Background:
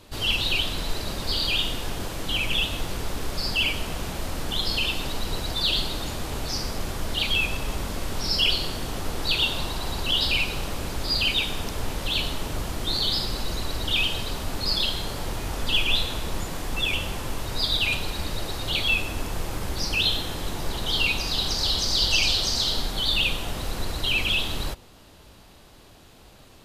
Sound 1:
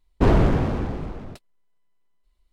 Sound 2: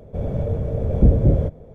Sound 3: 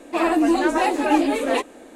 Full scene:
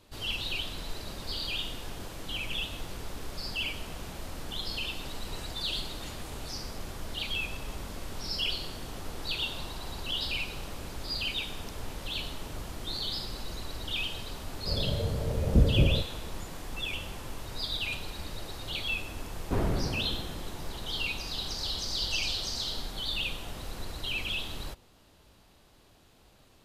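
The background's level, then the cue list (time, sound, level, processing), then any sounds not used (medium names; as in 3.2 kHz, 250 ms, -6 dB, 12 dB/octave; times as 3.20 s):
background -9.5 dB
4.91 s: add 3 -12.5 dB + spectral gate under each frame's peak -30 dB weak
14.53 s: add 2 -7.5 dB
19.30 s: add 1 -12 dB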